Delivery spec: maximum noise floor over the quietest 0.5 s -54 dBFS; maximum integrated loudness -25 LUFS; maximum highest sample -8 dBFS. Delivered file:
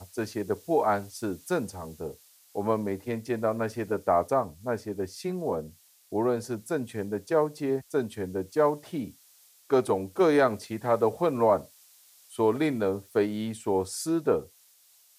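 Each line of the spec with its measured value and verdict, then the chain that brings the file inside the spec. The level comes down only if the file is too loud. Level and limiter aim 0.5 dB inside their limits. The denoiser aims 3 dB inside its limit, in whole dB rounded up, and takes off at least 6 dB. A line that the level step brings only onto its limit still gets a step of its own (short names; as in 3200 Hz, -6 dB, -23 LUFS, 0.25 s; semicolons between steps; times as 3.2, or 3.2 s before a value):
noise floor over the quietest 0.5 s -60 dBFS: OK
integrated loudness -28.5 LUFS: OK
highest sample -10.5 dBFS: OK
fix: none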